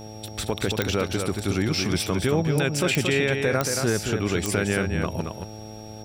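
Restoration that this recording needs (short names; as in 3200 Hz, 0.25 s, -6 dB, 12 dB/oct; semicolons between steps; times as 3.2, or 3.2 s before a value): de-click; de-hum 107.9 Hz, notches 8; notch 5600 Hz, Q 30; inverse comb 0.226 s -5.5 dB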